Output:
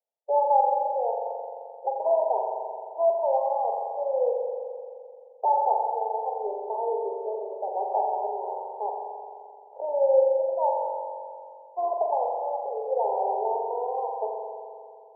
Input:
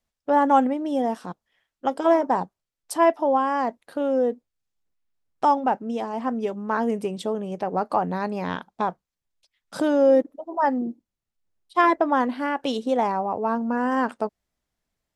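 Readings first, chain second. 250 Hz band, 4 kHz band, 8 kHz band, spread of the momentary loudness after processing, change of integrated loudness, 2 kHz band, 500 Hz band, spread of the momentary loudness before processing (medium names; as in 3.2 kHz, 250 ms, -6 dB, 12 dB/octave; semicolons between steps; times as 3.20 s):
under -25 dB, under -40 dB, under -35 dB, 16 LU, -3.0 dB, under -40 dB, -1.0 dB, 10 LU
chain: rattle on loud lows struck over -33 dBFS, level -12 dBFS; Chebyshev band-pass 400–930 Hz, order 5; spring tank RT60 2.4 s, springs 43 ms, chirp 45 ms, DRR -0.5 dB; trim -3.5 dB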